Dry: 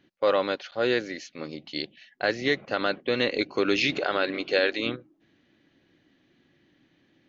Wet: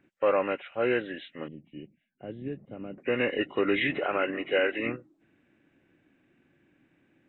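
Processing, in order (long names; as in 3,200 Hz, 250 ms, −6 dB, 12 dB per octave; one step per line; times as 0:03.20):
hearing-aid frequency compression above 1,300 Hz 1.5 to 1
0:01.48–0:02.98: drawn EQ curve 190 Hz 0 dB, 1,600 Hz −27 dB, 3,500 Hz −20 dB
level −1.5 dB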